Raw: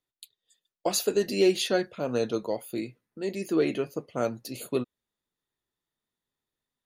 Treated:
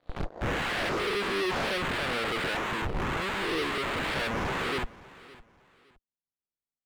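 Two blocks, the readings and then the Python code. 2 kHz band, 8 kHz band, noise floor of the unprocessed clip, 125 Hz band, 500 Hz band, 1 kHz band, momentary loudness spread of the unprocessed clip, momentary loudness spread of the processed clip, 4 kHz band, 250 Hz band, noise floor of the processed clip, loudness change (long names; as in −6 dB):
+10.5 dB, −9.0 dB, below −85 dBFS, +3.5 dB, −5.5 dB, +7.5 dB, 12 LU, 6 LU, +2.5 dB, −5.0 dB, below −85 dBFS, −1.0 dB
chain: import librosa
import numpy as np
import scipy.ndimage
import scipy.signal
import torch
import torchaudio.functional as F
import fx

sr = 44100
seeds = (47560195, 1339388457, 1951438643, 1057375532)

p1 = fx.spec_swells(x, sr, rise_s=1.15)
p2 = fx.schmitt(p1, sr, flips_db=-36.5)
p3 = p1 + (p2 * librosa.db_to_amplitude(-6.0))
p4 = fx.leveller(p3, sr, passes=5)
p5 = scipy.signal.sosfilt(scipy.signal.butter(2, 1100.0, 'lowpass', fs=sr, output='sos'), p4)
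p6 = 10.0 ** (-16.5 / 20.0) * (np.abs((p5 / 10.0 ** (-16.5 / 20.0) + 3.0) % 4.0 - 2.0) - 1.0)
p7 = fx.echo_feedback(p6, sr, ms=562, feedback_pct=28, wet_db=-20.0)
y = p7 * librosa.db_to_amplitude(-8.0)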